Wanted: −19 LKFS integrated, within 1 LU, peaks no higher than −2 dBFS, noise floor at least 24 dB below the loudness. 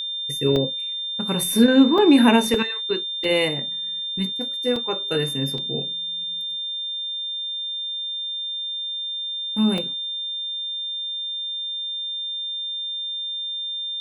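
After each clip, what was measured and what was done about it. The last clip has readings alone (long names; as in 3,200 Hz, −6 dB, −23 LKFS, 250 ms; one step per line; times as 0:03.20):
number of dropouts 7; longest dropout 2.8 ms; interfering tone 3,600 Hz; level of the tone −26 dBFS; integrated loudness −22.5 LKFS; sample peak −1.5 dBFS; target loudness −19.0 LKFS
→ repair the gap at 0:00.56/0:01.98/0:02.54/0:03.24/0:04.76/0:05.58/0:09.78, 2.8 ms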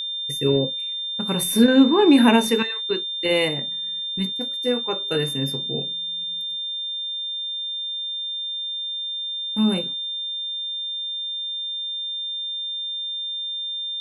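number of dropouts 0; interfering tone 3,600 Hz; level of the tone −26 dBFS
→ notch filter 3,600 Hz, Q 30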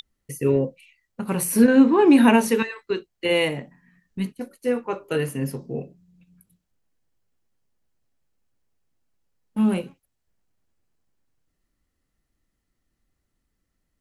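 interfering tone none found; integrated loudness −21.0 LKFS; sample peak −1.5 dBFS; target loudness −19.0 LKFS
→ level +2 dB
brickwall limiter −2 dBFS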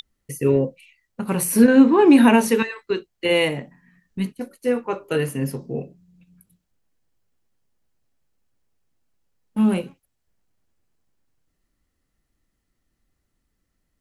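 integrated loudness −19.0 LKFS; sample peak −2.0 dBFS; background noise floor −76 dBFS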